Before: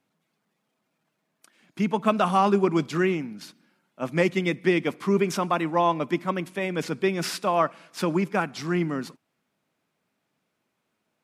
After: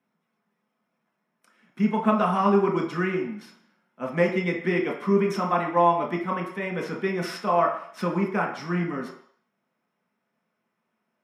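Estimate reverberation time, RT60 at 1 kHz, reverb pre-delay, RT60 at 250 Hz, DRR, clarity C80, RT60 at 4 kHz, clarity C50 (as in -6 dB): 0.60 s, 0.60 s, 3 ms, 0.40 s, -1.0 dB, 9.5 dB, 0.60 s, 6.5 dB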